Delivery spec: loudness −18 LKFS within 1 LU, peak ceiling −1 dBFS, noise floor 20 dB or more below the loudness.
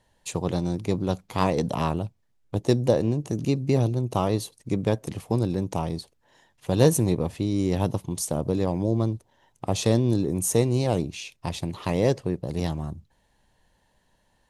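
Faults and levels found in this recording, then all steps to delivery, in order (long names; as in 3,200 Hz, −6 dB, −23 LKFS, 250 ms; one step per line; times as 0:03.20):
integrated loudness −26.0 LKFS; sample peak −5.0 dBFS; target loudness −18.0 LKFS
→ level +8 dB
brickwall limiter −1 dBFS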